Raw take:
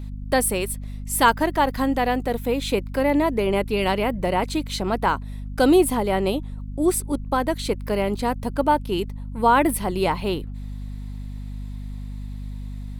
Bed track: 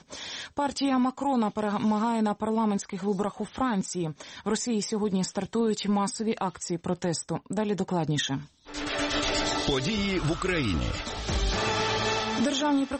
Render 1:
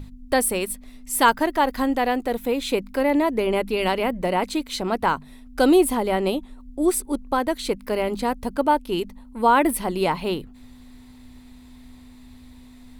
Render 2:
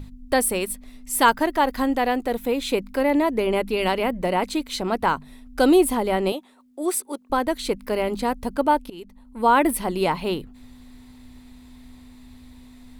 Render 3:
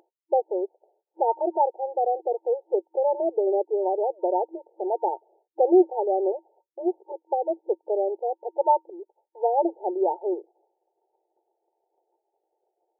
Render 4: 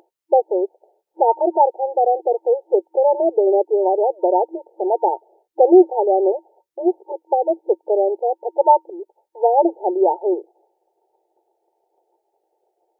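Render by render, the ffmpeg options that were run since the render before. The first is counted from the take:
ffmpeg -i in.wav -af "bandreject=frequency=50:width_type=h:width=6,bandreject=frequency=100:width_type=h:width=6,bandreject=frequency=150:width_type=h:width=6,bandreject=frequency=200:width_type=h:width=6" out.wav
ffmpeg -i in.wav -filter_complex "[0:a]asettb=1/sr,asplit=3[link_01][link_02][link_03];[link_01]atrim=end=6.324[link_04];[link_02]atrim=start=6.32:end=7.3,asetpts=PTS-STARTPTS,afade=type=in:duration=0.004:curve=qsin,afade=type=out:start_time=0.976:duration=0.004:curve=qsin,highpass=430[link_05];[link_03]atrim=start=7.296[link_06];[link_04][link_05]acrossfade=duration=0.004:curve1=hsin:curve2=qsin[link_07];[link_07][link_06]acrossfade=duration=0.004:curve1=qsin:curve2=hsin,asplit=2[link_08][link_09];[link_08]atrim=end=8.9,asetpts=PTS-STARTPTS,afade=type=out:start_time=8.896:duration=0.004:curve=hsin:silence=0.0944061[link_10];[link_09]atrim=start=8.9,asetpts=PTS-STARTPTS,afade=type=in:duration=0.62:silence=0.0944061[link_11];[link_10][link_11]concat=n=2:v=0:a=1" out.wav
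ffmpeg -i in.wav -af "afftfilt=real='re*between(b*sr/4096,330,920)':imag='im*between(b*sr/4096,330,920)':win_size=4096:overlap=0.75,agate=range=-33dB:threshold=-57dB:ratio=3:detection=peak" out.wav
ffmpeg -i in.wav -af "volume=7.5dB,alimiter=limit=-2dB:level=0:latency=1" out.wav

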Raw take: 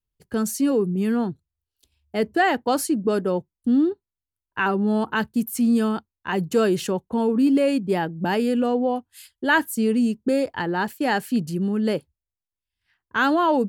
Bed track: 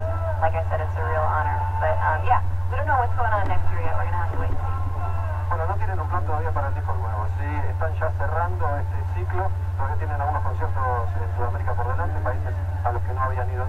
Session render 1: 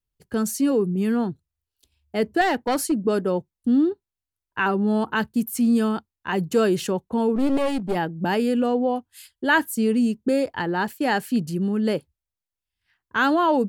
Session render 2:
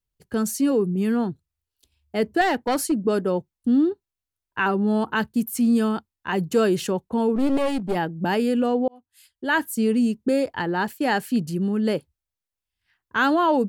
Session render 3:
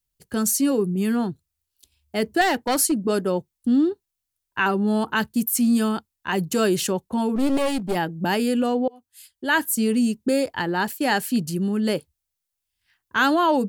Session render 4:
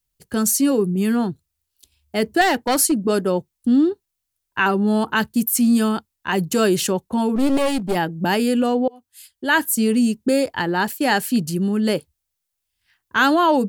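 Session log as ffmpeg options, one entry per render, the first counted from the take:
ffmpeg -i in.wav -filter_complex "[0:a]asettb=1/sr,asplit=3[link_01][link_02][link_03];[link_01]atrim=end=2.414[link_04];[link_02]atrim=start=2.41:end=2.92,asetpts=PTS-STARTPTS,afade=type=in:duration=0.004:curve=qsin,afade=type=out:start_time=0.506:duration=0.004:curve=qsin,aeval=exprs='clip(val(0),-1,0.133)':channel_layout=same[link_05];[link_03]atrim=start=2.916[link_06];[link_04][link_05]acrossfade=duration=0.004:curve1=hsin:curve2=qsin[link_07];[link_07][link_06]acrossfade=duration=0.004:curve1=qsin:curve2=hsin,asplit=3[link_08][link_09][link_10];[link_08]afade=type=out:start_time=7.35:duration=0.02[link_11];[link_09]aeval=exprs='clip(val(0),-1,0.0422)':channel_layout=same,afade=type=in:start_time=7.35:duration=0.02,afade=type=out:start_time=7.94:duration=0.02[link_12];[link_10]afade=type=in:start_time=7.94:duration=0.02[link_13];[link_11][link_12][link_13]amix=inputs=3:normalize=0" out.wav
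ffmpeg -i in.wav -filter_complex "[0:a]asplit=2[link_01][link_02];[link_01]atrim=end=8.88,asetpts=PTS-STARTPTS,afade=type=out:start_time=8.876:duration=0.004:curve=hsin[link_03];[link_02]atrim=start=8.88,asetpts=PTS-STARTPTS,afade=type=in:duration=0.92[link_04];[link_03][link_04]concat=n=2:v=0:a=1" out.wav
ffmpeg -i in.wav -af "highshelf=frequency=3800:gain=9.5,bandreject=frequency=460:width=15" out.wav
ffmpeg -i in.wav -af "volume=3dB" out.wav

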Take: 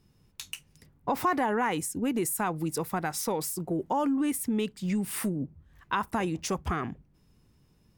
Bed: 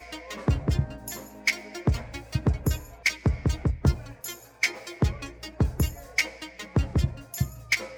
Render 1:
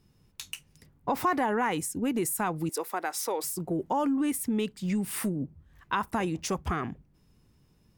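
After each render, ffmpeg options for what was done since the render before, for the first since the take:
ffmpeg -i in.wav -filter_complex "[0:a]asettb=1/sr,asplit=3[link_01][link_02][link_03];[link_01]atrim=end=2.694[link_04];[link_02]atrim=start=2.69:end=3.44,asetpts=PTS-STARTPTS,afade=type=in:duration=0.004:curve=qsin,afade=type=out:start_time=0.746:duration=0.004:curve=qsin,highpass=frequency=330:width=0.5412,highpass=frequency=330:width=1.3066[link_05];[link_03]atrim=start=3.436[link_06];[link_04][link_05]acrossfade=duration=0.004:curve1=hsin:curve2=qsin[link_07];[link_07][link_06]acrossfade=duration=0.004:curve1=qsin:curve2=hsin" out.wav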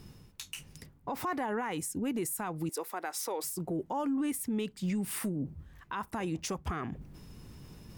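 ffmpeg -i in.wav -af "alimiter=level_in=2dB:limit=-24dB:level=0:latency=1:release=215,volume=-2dB,areverse,acompressor=mode=upward:threshold=-36dB:ratio=2.5,areverse" out.wav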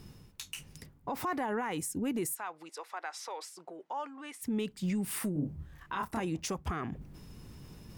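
ffmpeg -i in.wav -filter_complex "[0:a]asplit=3[link_01][link_02][link_03];[link_01]afade=type=out:start_time=2.34:duration=0.02[link_04];[link_02]highpass=760,lowpass=5100,afade=type=in:start_time=2.34:duration=0.02,afade=type=out:start_time=4.41:duration=0.02[link_05];[link_03]afade=type=in:start_time=4.41:duration=0.02[link_06];[link_04][link_05][link_06]amix=inputs=3:normalize=0,asettb=1/sr,asplit=3[link_07][link_08][link_09];[link_07]atrim=end=5.334[link_10];[link_08]atrim=start=5.33:end=6.2,asetpts=PTS-STARTPTS,afade=type=in:duration=0.004:curve=qsin,afade=type=out:start_time=0.866:duration=0.004:curve=qsin,asplit=2[link_11][link_12];[link_12]adelay=27,volume=-2.5dB[link_13];[link_11][link_13]amix=inputs=2:normalize=0,atrim=end_sample=38367[link_14];[link_09]atrim=start=6.196[link_15];[link_10][link_14]acrossfade=duration=0.004:curve1=hsin:curve2=qsin[link_16];[link_16][link_15]acrossfade=duration=0.004:curve1=qsin:curve2=hsin" out.wav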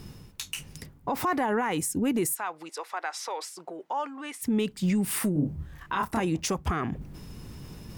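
ffmpeg -i in.wav -af "volume=7dB" out.wav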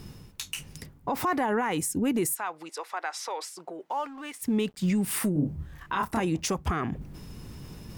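ffmpeg -i in.wav -filter_complex "[0:a]asettb=1/sr,asplit=3[link_01][link_02][link_03];[link_01]atrim=end=3.904[link_04];[link_02]atrim=start=3.9:end=5.14,asetpts=PTS-STARTPTS,afade=type=in:duration=0.004:curve=qsin,afade=type=out:start_time=1.236:duration=0.004:curve=qsin,aeval=exprs='sgn(val(0))*max(abs(val(0))-0.002,0)':channel_layout=same[link_05];[link_03]atrim=start=5.136[link_06];[link_04][link_05]acrossfade=duration=0.004:curve1=hsin:curve2=qsin[link_07];[link_07][link_06]acrossfade=duration=0.004:curve1=qsin:curve2=hsin" out.wav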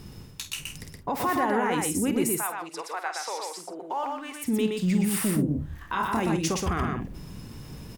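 ffmpeg -i in.wav -filter_complex "[0:a]asplit=2[link_01][link_02];[link_02]adelay=49,volume=-11dB[link_03];[link_01][link_03]amix=inputs=2:normalize=0,aecho=1:1:121:0.708" out.wav

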